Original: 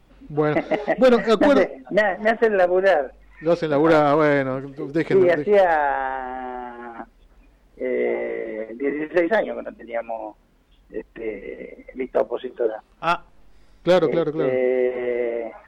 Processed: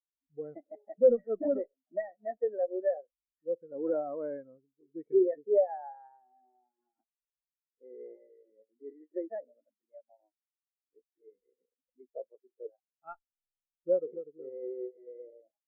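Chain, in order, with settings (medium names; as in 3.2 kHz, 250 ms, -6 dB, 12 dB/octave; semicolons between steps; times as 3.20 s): low-pass 2.7 kHz 12 dB/octave; spectral contrast expander 2.5:1; trim -4 dB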